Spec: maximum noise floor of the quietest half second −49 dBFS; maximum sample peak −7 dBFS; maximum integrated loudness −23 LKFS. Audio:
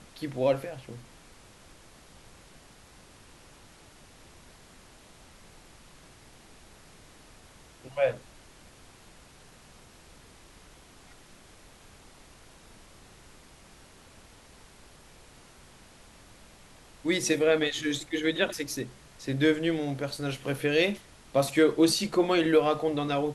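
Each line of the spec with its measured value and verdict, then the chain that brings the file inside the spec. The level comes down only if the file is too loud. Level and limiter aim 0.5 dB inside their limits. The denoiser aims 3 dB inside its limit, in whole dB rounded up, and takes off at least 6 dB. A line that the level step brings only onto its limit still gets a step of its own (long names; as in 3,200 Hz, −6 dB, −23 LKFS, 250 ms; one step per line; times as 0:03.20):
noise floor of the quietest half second −54 dBFS: in spec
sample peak −10.0 dBFS: in spec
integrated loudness −27.5 LKFS: in spec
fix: no processing needed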